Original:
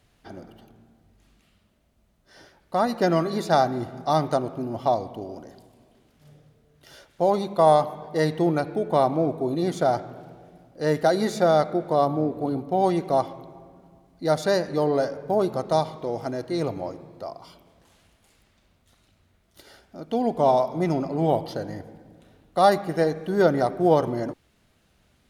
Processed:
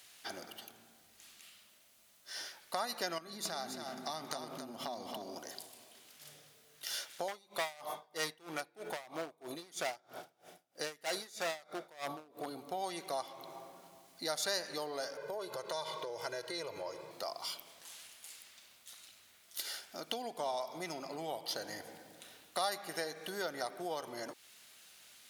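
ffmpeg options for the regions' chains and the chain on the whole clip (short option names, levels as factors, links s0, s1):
-filter_complex "[0:a]asettb=1/sr,asplit=3[s0][s1][s2];[s0]atrim=end=3.184[s3];[s1]atrim=start=3.18:end=5.38,asetpts=PTS-STARTPTS,afade=t=in:d=0.004:c=qsin,afade=t=out:st=2.196:d=0.004:c=qsin,equalizer=f=210:w=1.8:g=12,acompressor=threshold=0.0316:ratio=5:attack=3.2:release=140:knee=1:detection=peak,aecho=1:1:273:0.447,atrim=end_sample=97020[s4];[s2]atrim=start=5.376[s5];[s3][s4]acrossfade=d=0.004:c1=hsin:c2=qsin[s6];[s6][s5]acrossfade=d=0.004:c1=qsin:c2=hsin,asettb=1/sr,asplit=3[s7][s8][s9];[s7]atrim=end=7.284[s10];[s8]atrim=start=7.28:end=12.46,asetpts=PTS-STARTPTS,afade=t=in:d=0.004:c=qsin,afade=t=out:st=5.176:d=0.004:c=qsin,bandreject=f=4200:w=16,asoftclip=type=hard:threshold=0.112,aeval=exprs='val(0)*pow(10,-28*(0.5-0.5*cos(2*PI*3.1*n/s))/20)':c=same[s11];[s9]atrim=start=12.456[s12];[s10][s11]acrossfade=d=0.004:c1=hsin:c2=qsin[s13];[s13][s12]acrossfade=d=0.004:c1=qsin:c2=hsin,asettb=1/sr,asplit=3[s14][s15][s16];[s14]atrim=end=15.174[s17];[s15]atrim=start=15.17:end=17.11,asetpts=PTS-STARTPTS,afade=t=in:d=0.004:c=qsin,afade=t=out:st=1.936:d=0.004:c=qsin,highshelf=f=4500:g=-8,aecho=1:1:2:0.81,atrim=end_sample=85554,acompressor=threshold=0.0355:ratio=2.5:attack=3.2:release=140:knee=1:detection=peak[s18];[s16]atrim=start=17.106[s19];[s17][s18]acrossfade=d=0.004:c1=hsin:c2=qsin[s20];[s20][s19]acrossfade=d=0.004:c1=qsin:c2=hsin,highshelf=f=6500:g=-7,acompressor=threshold=0.0178:ratio=4,aderivative,volume=7.94"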